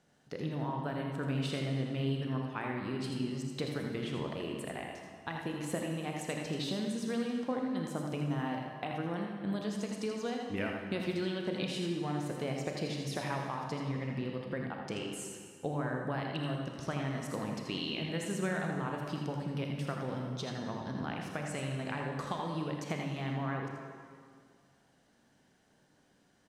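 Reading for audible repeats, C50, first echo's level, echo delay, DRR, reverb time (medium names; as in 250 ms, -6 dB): 1, 1.0 dB, -6.0 dB, 81 ms, 0.5 dB, 2.1 s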